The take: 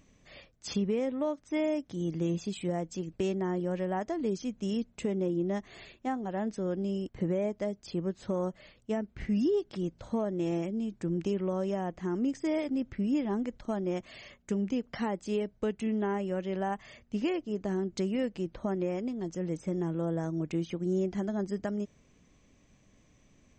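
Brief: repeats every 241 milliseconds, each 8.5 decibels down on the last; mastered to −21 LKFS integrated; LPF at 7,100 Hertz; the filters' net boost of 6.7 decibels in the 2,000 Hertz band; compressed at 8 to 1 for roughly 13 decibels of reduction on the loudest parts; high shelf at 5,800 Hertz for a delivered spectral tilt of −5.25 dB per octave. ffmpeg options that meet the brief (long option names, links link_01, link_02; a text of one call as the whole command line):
ffmpeg -i in.wav -af "lowpass=7100,equalizer=frequency=2000:width_type=o:gain=7.5,highshelf=frequency=5800:gain=4,acompressor=threshold=-39dB:ratio=8,aecho=1:1:241|482|723|964:0.376|0.143|0.0543|0.0206,volume=22dB" out.wav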